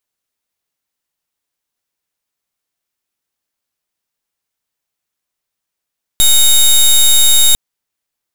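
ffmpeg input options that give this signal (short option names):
-f lavfi -i "aevalsrc='0.422*(2*lt(mod(3740*t,1),0.16)-1)':d=1.35:s=44100"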